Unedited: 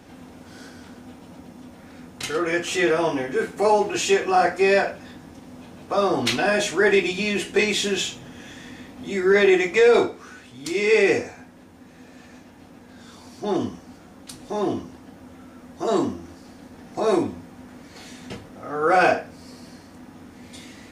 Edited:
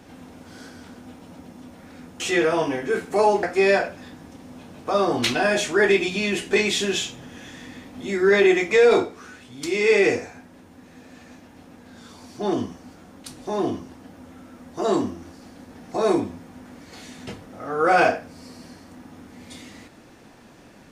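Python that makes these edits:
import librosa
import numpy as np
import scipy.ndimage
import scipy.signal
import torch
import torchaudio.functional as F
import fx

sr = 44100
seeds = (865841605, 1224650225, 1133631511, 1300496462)

y = fx.edit(x, sr, fx.cut(start_s=2.2, length_s=0.46),
    fx.cut(start_s=3.89, length_s=0.57), tone=tone)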